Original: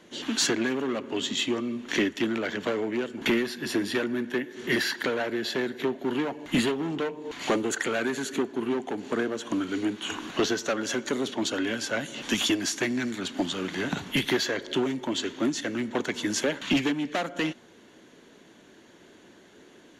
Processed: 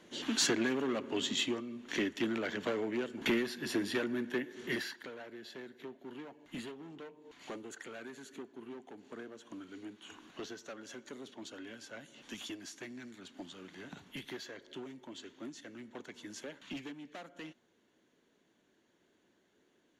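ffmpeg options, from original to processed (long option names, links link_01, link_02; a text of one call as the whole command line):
ffmpeg -i in.wav -af "volume=1.5dB,afade=type=out:start_time=1.41:duration=0.25:silence=0.398107,afade=type=in:start_time=1.66:duration=0.6:silence=0.473151,afade=type=out:start_time=4.5:duration=0.5:silence=0.237137" out.wav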